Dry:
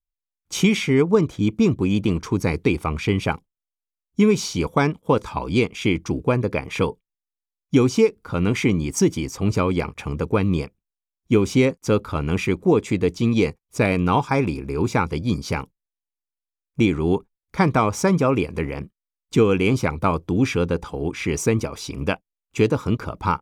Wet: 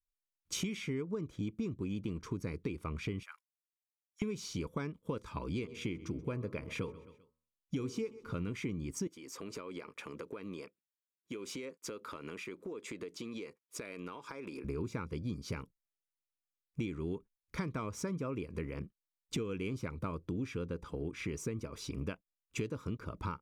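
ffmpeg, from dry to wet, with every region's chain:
ffmpeg -i in.wav -filter_complex "[0:a]asettb=1/sr,asplit=3[link_01][link_02][link_03];[link_01]atrim=end=3.234[link_04];[link_02]atrim=start=3.23:end=4.22,asetpts=PTS-STARTPTS,afade=type=in:duration=0.004:curve=qsin,afade=type=out:start_time=0.986:duration=0.004:curve=qsin,equalizer=frequency=3500:width=0.91:gain=-7.5,acompressor=threshold=-21dB:ratio=2.5:attack=3.2:release=140:knee=1:detection=peak,highpass=frequency=1400:width=0.5412,highpass=frequency=1400:width=1.3066[link_05];[link_03]atrim=start=4.216[link_06];[link_04][link_05]acrossfade=duration=0.004:curve1=hsin:curve2=qsin[link_07];[link_07][link_06]acrossfade=duration=0.004:curve1=qsin:curve2=hsin,asettb=1/sr,asplit=3[link_08][link_09][link_10];[link_08]atrim=end=5.534[link_11];[link_09]atrim=start=5.53:end=8.5,asetpts=PTS-STARTPTS,afade=type=in:duration=0.004:curve=qsin,afade=type=out:start_time=2.966:duration=0.004:curve=qsin,bandreject=frequency=79.28:width_type=h:width=4,bandreject=frequency=158.56:width_type=h:width=4,bandreject=frequency=237.84:width_type=h:width=4,bandreject=frequency=317.12:width_type=h:width=4,bandreject=frequency=396.4:width_type=h:width=4,bandreject=frequency=475.68:width_type=h:width=4,bandreject=frequency=554.96:width_type=h:width=4,bandreject=frequency=634.24:width_type=h:width=4,bandreject=frequency=713.52:width_type=h:width=4,bandreject=frequency=792.8:width_type=h:width=4,bandreject=frequency=872.08:width_type=h:width=4,bandreject=frequency=951.36:width_type=h:width=4,bandreject=frequency=1030.64:width_type=h:width=4,bandreject=frequency=1109.92:width_type=h:width=4,bandreject=frequency=1189.2:width_type=h:width=4,bandreject=frequency=1268.48:width_type=h:width=4,bandreject=frequency=1347.76:width_type=h:width=4,aecho=1:1:130|260|390:0.0891|0.0312|0.0109,atrim=end_sample=130977[link_12];[link_10]atrim=start=8.496[link_13];[link_11][link_12]acrossfade=duration=0.004:curve1=hsin:curve2=qsin[link_14];[link_14][link_13]acrossfade=duration=0.004:curve1=qsin:curve2=hsin,asettb=1/sr,asplit=3[link_15][link_16][link_17];[link_15]atrim=end=9.074[link_18];[link_16]atrim=start=9.07:end=14.64,asetpts=PTS-STARTPTS,afade=type=in:duration=0.004:curve=qsin,afade=type=out:start_time=5.566:duration=0.004:curve=qsin,highpass=380,bandreject=frequency=5800:width=28,acompressor=threshold=-31dB:ratio=16:attack=3.2:release=140:knee=1:detection=peak[link_19];[link_17]atrim=start=14.636[link_20];[link_18][link_19]acrossfade=duration=0.004:curve1=hsin:curve2=qsin[link_21];[link_21][link_20]acrossfade=duration=0.004:curve1=qsin:curve2=hsin,equalizer=frequency=780:width=3.3:gain=-13.5,acompressor=threshold=-29dB:ratio=6,adynamicequalizer=threshold=0.00316:dfrequency=1800:dqfactor=0.7:tfrequency=1800:tqfactor=0.7:attack=5:release=100:ratio=0.375:range=2.5:mode=cutabove:tftype=highshelf,volume=-6dB" out.wav

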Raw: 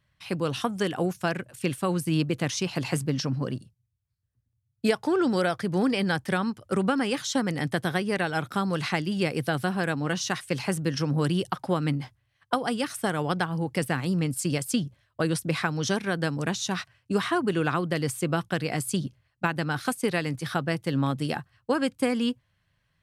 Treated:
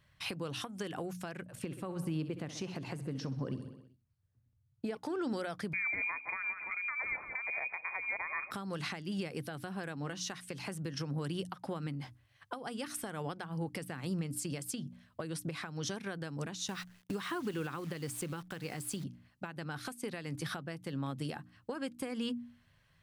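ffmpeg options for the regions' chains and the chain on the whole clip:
ffmpeg -i in.wav -filter_complex "[0:a]asettb=1/sr,asplit=3[link_01][link_02][link_03];[link_01]atrim=end=1.464[link_04];[link_02]atrim=start=1.46:end=4.97,asetpts=PTS-STARTPTS,afade=type=in:duration=0.004:curve=qsin,afade=type=out:start_time=3.506:duration=0.004:curve=qsin,highshelf=frequency=2100:gain=-9.5,aecho=1:1:64|128|192|256|320|384:0.178|0.103|0.0598|0.0347|0.0201|0.0117,atrim=end_sample=154791[link_05];[link_03]atrim=start=4.966[link_06];[link_04][link_05]acrossfade=duration=0.004:curve1=hsin:curve2=qsin[link_07];[link_07][link_06]acrossfade=duration=0.004:curve1=qsin:curve2=hsin,asettb=1/sr,asplit=3[link_08][link_09][link_10];[link_08]atrim=end=5.734[link_11];[link_09]atrim=start=5.73:end=8.51,asetpts=PTS-STARTPTS,afade=type=in:duration=0.004:curve=qsin,afade=type=out:start_time=2.776:duration=0.004:curve=qsin,lowpass=frequency=2200:width_type=q:width=0.5098,lowpass=frequency=2200:width_type=q:width=0.6013,lowpass=frequency=2200:width_type=q:width=0.9,lowpass=frequency=2200:width_type=q:width=2.563,afreqshift=-2600,asplit=2[link_12][link_13];[link_13]adelay=170,lowpass=frequency=1200:poles=1,volume=-11dB,asplit=2[link_14][link_15];[link_15]adelay=170,lowpass=frequency=1200:poles=1,volume=0.49,asplit=2[link_16][link_17];[link_17]adelay=170,lowpass=frequency=1200:poles=1,volume=0.49,asplit=2[link_18][link_19];[link_19]adelay=170,lowpass=frequency=1200:poles=1,volume=0.49,asplit=2[link_20][link_21];[link_21]adelay=170,lowpass=frequency=1200:poles=1,volume=0.49[link_22];[link_12][link_14][link_16][link_18][link_20][link_22]amix=inputs=6:normalize=0,atrim=end_sample=122598[link_23];[link_10]atrim=start=8.506[link_24];[link_11][link_23]acrossfade=duration=0.004:curve1=hsin:curve2=qsin[link_25];[link_25][link_24]acrossfade=duration=0.004:curve1=qsin:curve2=hsin,asettb=1/sr,asplit=3[link_26][link_27][link_28];[link_26]atrim=end=16.684[link_29];[link_27]atrim=start=16.68:end=19.04,asetpts=PTS-STARTPTS,afade=type=in:duration=0.004:curve=qsin,afade=type=out:start_time=2.356:duration=0.004:curve=qsin,bandreject=frequency=670:width=7.5,acrusher=bits=8:dc=4:mix=0:aa=0.000001[link_30];[link_28]atrim=start=19.036[link_31];[link_29][link_30]acrossfade=duration=0.004:curve1=hsin:curve2=qsin[link_32];[link_32][link_31]acrossfade=duration=0.004:curve1=qsin:curve2=hsin,bandreject=frequency=60:width_type=h:width=6,bandreject=frequency=120:width_type=h:width=6,bandreject=frequency=180:width_type=h:width=6,bandreject=frequency=240:width_type=h:width=6,bandreject=frequency=300:width_type=h:width=6,acompressor=threshold=-33dB:ratio=6,alimiter=level_in=6.5dB:limit=-24dB:level=0:latency=1:release=393,volume=-6.5dB,volume=3.5dB" out.wav

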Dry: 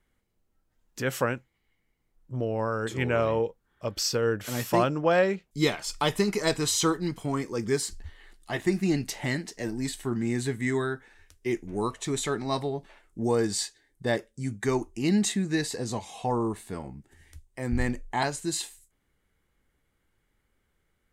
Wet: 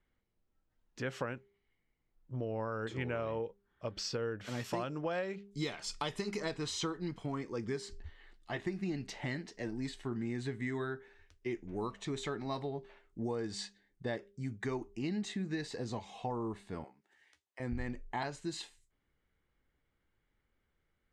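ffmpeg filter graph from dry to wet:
ffmpeg -i in.wav -filter_complex "[0:a]asettb=1/sr,asplit=3[link_01][link_02][link_03];[link_01]atrim=end=4.644[link_04];[link_02]atrim=start=4.64:end=6.4,asetpts=PTS-STARTPTS,afade=type=in:duration=0.004:curve=qsin,afade=type=out:start_time=1.756:duration=0.004:curve=qsin,lowpass=11000,aemphasis=mode=production:type=50fm[link_05];[link_03]atrim=start=6.396[link_06];[link_04][link_05]acrossfade=duration=0.004:curve1=hsin:curve2=qsin[link_07];[link_07][link_06]acrossfade=duration=0.004:curve1=qsin:curve2=hsin,asettb=1/sr,asplit=3[link_08][link_09][link_10];[link_08]atrim=end=16.844[link_11];[link_09]atrim=start=16.84:end=17.6,asetpts=PTS-STARTPTS,afade=type=in:duration=0.004:curve=qsin,afade=type=out:start_time=0.756:duration=0.004:curve=qsin,highpass=620,asplit=2[link_12][link_13];[link_13]adelay=13,volume=-12dB[link_14];[link_12][link_14]amix=inputs=2:normalize=0,atrim=end_sample=33516[link_15];[link_10]atrim=start=17.596[link_16];[link_11][link_15]acrossfade=duration=0.004:curve1=hsin:curve2=qsin[link_17];[link_17][link_16]acrossfade=duration=0.004:curve1=qsin:curve2=hsin,lowpass=4500,bandreject=frequency=200.6:width_type=h:width=4,bandreject=frequency=401.2:width_type=h:width=4,acompressor=threshold=-27dB:ratio=6,volume=-6dB" out.wav

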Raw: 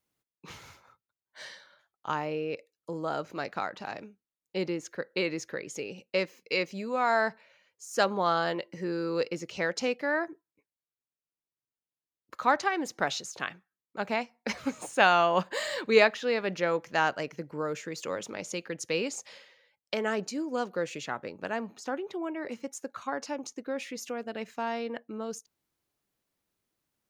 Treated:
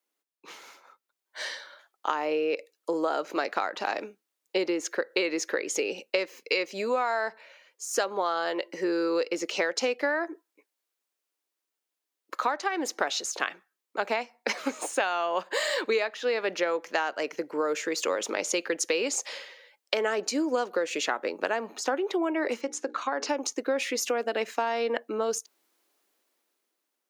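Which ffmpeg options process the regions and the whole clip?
ffmpeg -i in.wav -filter_complex "[0:a]asettb=1/sr,asplit=3[link_01][link_02][link_03];[link_01]atrim=end=22.614[link_04];[link_02]atrim=start=22.61:end=23.29,asetpts=PTS-STARTPTS,afade=type=in:duration=0.004:curve=qsin,afade=type=out:start_time=0.676:duration=0.004:curve=qsin,bandreject=frequency=60:width_type=h:width=6,bandreject=frequency=120:width_type=h:width=6,bandreject=frequency=180:width_type=h:width=6,bandreject=frequency=240:width_type=h:width=6,bandreject=frequency=300:width_type=h:width=6,bandreject=frequency=360:width_type=h:width=6,bandreject=frequency=420:width_type=h:width=6,bandreject=frequency=480:width_type=h:width=6,acompressor=threshold=-35dB:ratio=2.5:attack=3.2:release=140:knee=1:detection=peak,highpass=130,lowpass=5800[link_05];[link_03]atrim=start=23.286[link_06];[link_04][link_05]acrossfade=duration=0.004:curve1=hsin:curve2=qsin[link_07];[link_07][link_06]acrossfade=duration=0.004:curve1=qsin:curve2=hsin,dynaudnorm=framelen=250:gausssize=9:maxgain=11.5dB,highpass=frequency=300:width=0.5412,highpass=frequency=300:width=1.3066,acompressor=threshold=-23dB:ratio=16" out.wav

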